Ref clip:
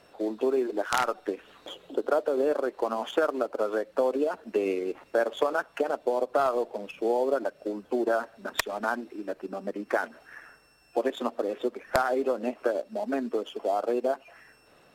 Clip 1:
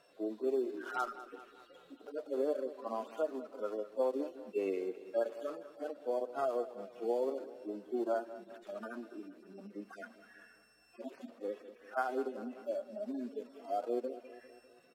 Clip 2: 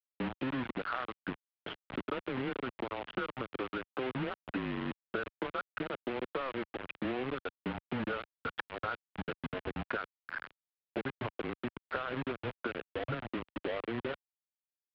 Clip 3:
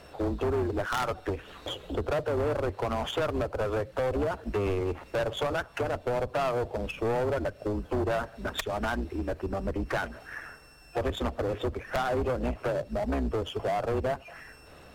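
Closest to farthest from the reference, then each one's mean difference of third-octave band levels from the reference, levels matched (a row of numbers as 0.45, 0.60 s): 1, 3, 2; 5.5, 7.5, 11.5 dB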